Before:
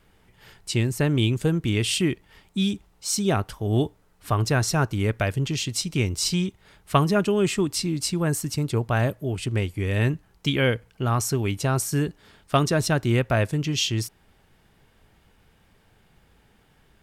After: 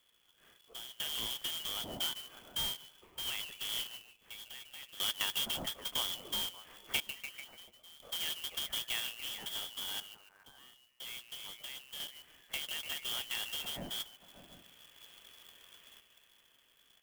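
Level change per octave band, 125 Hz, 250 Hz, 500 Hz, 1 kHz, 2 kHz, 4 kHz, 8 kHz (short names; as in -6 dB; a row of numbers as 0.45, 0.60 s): -36.0, -30.5, -27.5, -19.5, -13.5, -4.5, -12.5 dB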